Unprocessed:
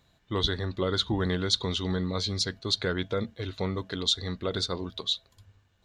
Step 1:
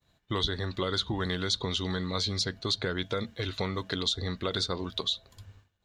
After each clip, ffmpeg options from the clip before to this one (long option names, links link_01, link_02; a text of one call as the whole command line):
ffmpeg -i in.wav -filter_complex "[0:a]agate=range=-33dB:threshold=-57dB:ratio=3:detection=peak,acrossover=split=1000|3600[link_01][link_02][link_03];[link_01]acompressor=threshold=-38dB:ratio=4[link_04];[link_02]acompressor=threshold=-42dB:ratio=4[link_05];[link_03]acompressor=threshold=-40dB:ratio=4[link_06];[link_04][link_05][link_06]amix=inputs=3:normalize=0,volume=6.5dB" out.wav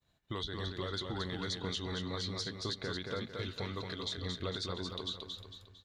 ffmpeg -i in.wav -filter_complex "[0:a]alimiter=limit=-21dB:level=0:latency=1:release=197,asplit=2[link_01][link_02];[link_02]aecho=0:1:226|452|678|904|1130:0.596|0.238|0.0953|0.0381|0.0152[link_03];[link_01][link_03]amix=inputs=2:normalize=0,volume=-6.5dB" out.wav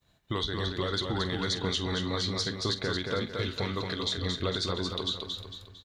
ffmpeg -i in.wav -filter_complex "[0:a]asplit=2[link_01][link_02];[link_02]adelay=47,volume=-14dB[link_03];[link_01][link_03]amix=inputs=2:normalize=0,volume=7.5dB" out.wav